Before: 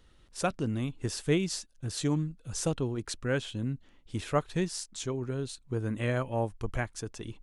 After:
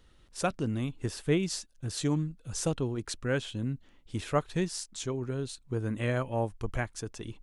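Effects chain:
0:00.94–0:01.43: dynamic equaliser 6,600 Hz, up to −6 dB, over −52 dBFS, Q 0.75

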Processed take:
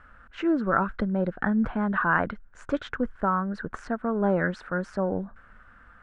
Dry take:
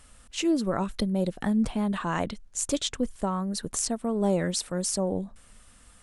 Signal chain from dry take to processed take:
low-pass with resonance 1,500 Hz, resonance Q 6.1

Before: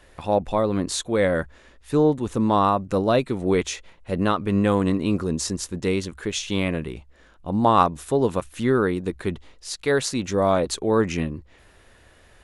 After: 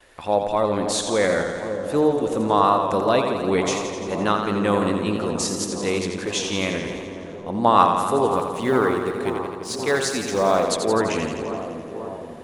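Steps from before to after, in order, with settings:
0:08.28–0:10.64: mu-law and A-law mismatch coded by A
noise gate with hold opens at −49 dBFS
low-shelf EQ 220 Hz −11.5 dB
bucket-brigade delay 535 ms, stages 4,096, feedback 72%, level −11 dB
feedback echo with a swinging delay time 85 ms, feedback 72%, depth 72 cents, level −7 dB
level +2 dB

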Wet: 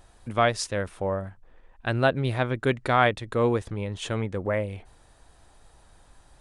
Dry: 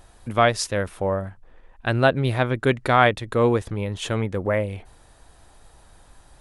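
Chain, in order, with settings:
downsampling to 22,050 Hz
level −4 dB

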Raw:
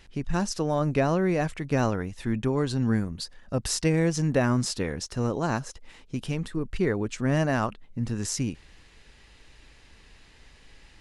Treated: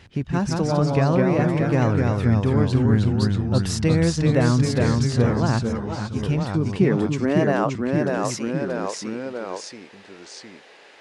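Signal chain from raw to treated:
high-shelf EQ 6,000 Hz −10 dB
in parallel at +0.5 dB: downward compressor, threshold −34 dBFS, peak gain reduction 15 dB
on the sum: high-pass filter sweep 91 Hz → 530 Hz, 0:06.16–0:07.69
delay with pitch and tempo change per echo 151 ms, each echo −1 semitone, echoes 3
0:05.63–0:06.23: string-ensemble chorus

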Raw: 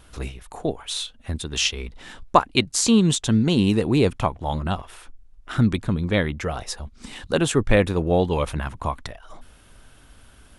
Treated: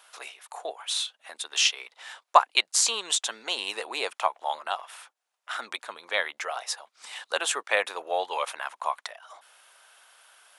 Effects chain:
high-pass filter 670 Hz 24 dB per octave

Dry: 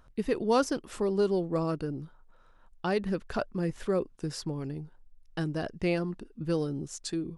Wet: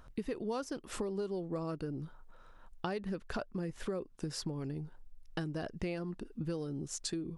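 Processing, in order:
downward compressor 6 to 1, threshold −38 dBFS, peak gain reduction 16.5 dB
level +3 dB

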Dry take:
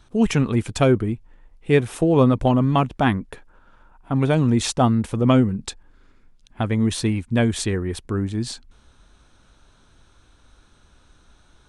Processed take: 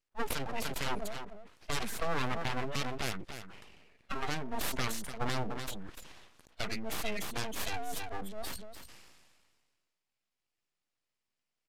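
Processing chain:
phase distortion by the signal itself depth 0.69 ms
meter weighting curve A
noise reduction from a noise print of the clip's start 29 dB
dynamic equaliser 970 Hz, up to −5 dB, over −31 dBFS, Q 0.89
downward compressor 3 to 1, threshold −30 dBFS, peak gain reduction 11 dB
brickwall limiter −22.5 dBFS, peak gain reduction 10 dB
single-tap delay 296 ms −16.5 dB
full-wave rectification
downsampling to 32,000 Hz
level that may fall only so fast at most 34 dB per second
level +2.5 dB

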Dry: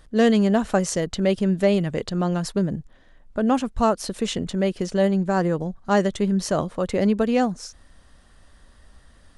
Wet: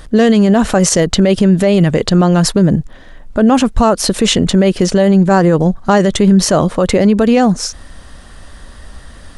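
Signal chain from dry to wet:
boost into a limiter +18 dB
level −1 dB

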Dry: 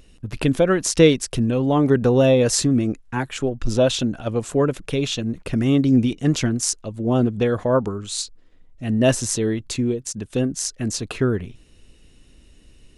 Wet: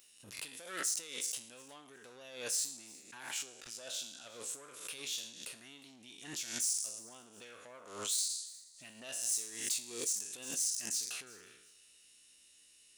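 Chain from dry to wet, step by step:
peak hold with a decay on every bin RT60 0.63 s
downward compressor 16 to 1, threshold −26 dBFS, peak gain reduction 19 dB
soft clipping −25.5 dBFS, distortion −15 dB
first difference
feedback echo with a high-pass in the loop 359 ms, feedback 27%, high-pass 930 Hz, level −21 dB
background raised ahead of every attack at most 81 dB per second

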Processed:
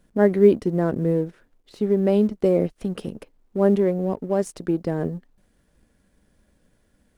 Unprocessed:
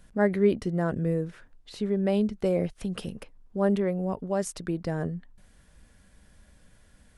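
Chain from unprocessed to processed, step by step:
mu-law and A-law mismatch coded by A
parametric band 340 Hz +9.5 dB 1.9 octaves

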